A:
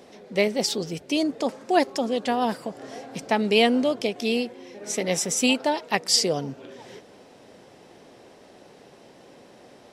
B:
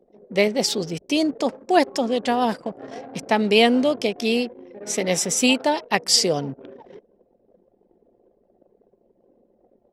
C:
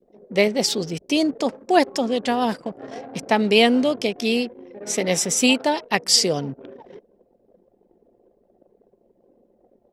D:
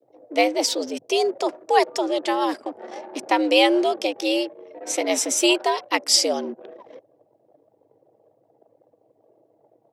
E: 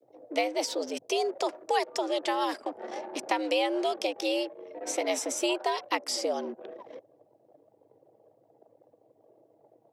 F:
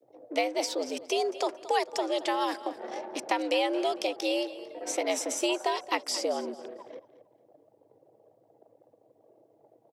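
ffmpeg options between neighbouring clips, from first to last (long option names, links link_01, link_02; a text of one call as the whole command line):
ffmpeg -i in.wav -af "anlmdn=0.398,volume=3dB" out.wav
ffmpeg -i in.wav -af "adynamicequalizer=threshold=0.0224:dfrequency=710:dqfactor=0.85:tfrequency=710:tqfactor=0.85:attack=5:release=100:ratio=0.375:range=1.5:mode=cutabove:tftype=bell,volume=1dB" out.wav
ffmpeg -i in.wav -af "afreqshift=98,volume=-1dB" out.wav
ffmpeg -i in.wav -filter_complex "[0:a]acrossover=split=450|1500[link_01][link_02][link_03];[link_01]acompressor=threshold=-37dB:ratio=4[link_04];[link_02]acompressor=threshold=-26dB:ratio=4[link_05];[link_03]acompressor=threshold=-32dB:ratio=4[link_06];[link_04][link_05][link_06]amix=inputs=3:normalize=0,volume=-1.5dB" out.wav
ffmpeg -i in.wav -af "aecho=1:1:225|450|675:0.158|0.0428|0.0116" out.wav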